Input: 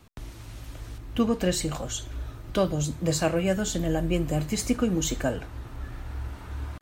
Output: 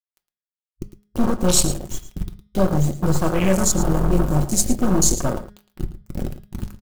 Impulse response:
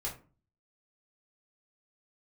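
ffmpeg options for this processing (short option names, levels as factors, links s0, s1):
-filter_complex "[0:a]bass=f=250:g=6,treble=f=4000:g=13,acrusher=bits=3:mix=0:aa=0.000001,aeval=exprs='(tanh(3.98*val(0)+0.7)-tanh(0.7))/3.98':c=same,asplit=2[s0][s1];[1:a]atrim=start_sample=2205[s2];[s1][s2]afir=irnorm=-1:irlink=0,volume=0.299[s3];[s0][s3]amix=inputs=2:normalize=0,afwtdn=0.0398,aecho=1:1:5.5:0.35,bandreject=f=206.2:t=h:w=4,bandreject=f=412.4:t=h:w=4,bandreject=f=618.6:t=h:w=4,bandreject=f=824.8:t=h:w=4,bandreject=f=1031:t=h:w=4,bandreject=f=1237.2:t=h:w=4,bandreject=f=1443.4:t=h:w=4,bandreject=f=1649.6:t=h:w=4,bandreject=f=1855.8:t=h:w=4,bandreject=f=2062:t=h:w=4,bandreject=f=2268.2:t=h:w=4,bandreject=f=2474.4:t=h:w=4,bandreject=f=2680.6:t=h:w=4,bandreject=f=2886.8:t=h:w=4,bandreject=f=3093:t=h:w=4,bandreject=f=3299.2:t=h:w=4,bandreject=f=3505.4:t=h:w=4,bandreject=f=3711.6:t=h:w=4,bandreject=f=3917.8:t=h:w=4,bandreject=f=4124:t=h:w=4,bandreject=f=4330.2:t=h:w=4,bandreject=f=4536.4:t=h:w=4,bandreject=f=4742.6:t=h:w=4,bandreject=f=4948.8:t=h:w=4,bandreject=f=5155:t=h:w=4,bandreject=f=5361.2:t=h:w=4,bandreject=f=5567.4:t=h:w=4,asplit=2[s4][s5];[s5]aecho=0:1:111:0.211[s6];[s4][s6]amix=inputs=2:normalize=0,volume=1.68"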